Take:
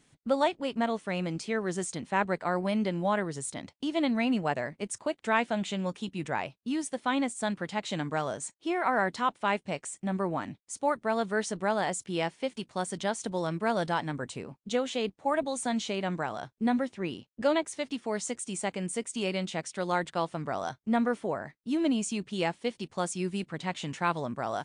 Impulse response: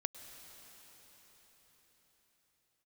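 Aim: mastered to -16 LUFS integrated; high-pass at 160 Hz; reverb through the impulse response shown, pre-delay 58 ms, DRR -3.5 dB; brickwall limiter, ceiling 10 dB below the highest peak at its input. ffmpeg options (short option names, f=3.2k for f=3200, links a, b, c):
-filter_complex "[0:a]highpass=160,alimiter=limit=-21.5dB:level=0:latency=1,asplit=2[a][b];[1:a]atrim=start_sample=2205,adelay=58[c];[b][c]afir=irnorm=-1:irlink=0,volume=4dB[d];[a][d]amix=inputs=2:normalize=0,volume=12.5dB"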